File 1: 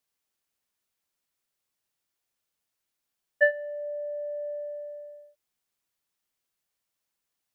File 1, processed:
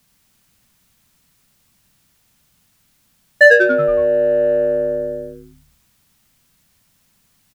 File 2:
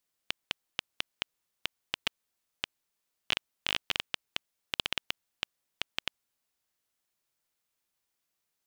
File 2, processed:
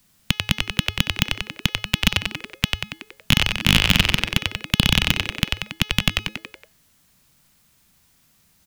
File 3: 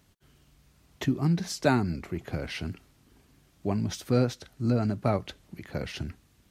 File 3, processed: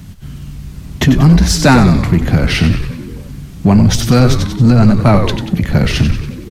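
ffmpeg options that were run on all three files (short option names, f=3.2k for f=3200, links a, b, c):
-filter_complex "[0:a]lowshelf=f=280:t=q:w=1.5:g=11,acrossover=split=360[a][b];[a]acompressor=threshold=-30dB:ratio=2.5[c];[c][b]amix=inputs=2:normalize=0,asplit=2[d][e];[e]asplit=6[f][g][h][i][j][k];[f]adelay=93,afreqshift=-110,volume=-8dB[l];[g]adelay=186,afreqshift=-220,volume=-13.7dB[m];[h]adelay=279,afreqshift=-330,volume=-19.4dB[n];[i]adelay=372,afreqshift=-440,volume=-25dB[o];[j]adelay=465,afreqshift=-550,volume=-30.7dB[p];[k]adelay=558,afreqshift=-660,volume=-36.4dB[q];[l][m][n][o][p][q]amix=inputs=6:normalize=0[r];[d][r]amix=inputs=2:normalize=0,apsyclip=20dB,bandreject=f=422.9:t=h:w=4,bandreject=f=845.8:t=h:w=4,bandreject=f=1.2687k:t=h:w=4,bandreject=f=1.6916k:t=h:w=4,bandreject=f=2.1145k:t=h:w=4,bandreject=f=2.5374k:t=h:w=4,bandreject=f=2.9603k:t=h:w=4,bandreject=f=3.3832k:t=h:w=4,bandreject=f=3.8061k:t=h:w=4,bandreject=f=4.229k:t=h:w=4,bandreject=f=4.6519k:t=h:w=4,bandreject=f=5.0748k:t=h:w=4,bandreject=f=5.4977k:t=h:w=4,bandreject=f=5.9206k:t=h:w=4,bandreject=f=6.3435k:t=h:w=4,asplit=2[s][t];[t]asoftclip=type=tanh:threshold=-15dB,volume=-4dB[u];[s][u]amix=inputs=2:normalize=0,volume=-3dB"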